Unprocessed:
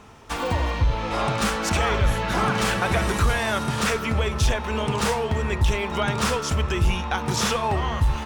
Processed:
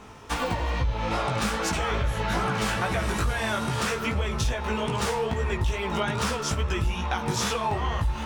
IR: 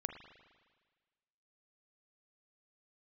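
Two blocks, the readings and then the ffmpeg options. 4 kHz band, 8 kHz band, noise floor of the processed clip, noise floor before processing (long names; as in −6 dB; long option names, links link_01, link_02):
−3.5 dB, −3.5 dB, −33 dBFS, −30 dBFS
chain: -af "acompressor=threshold=-25dB:ratio=6,flanger=delay=15.5:depth=4:speed=2.4,volume=4.5dB"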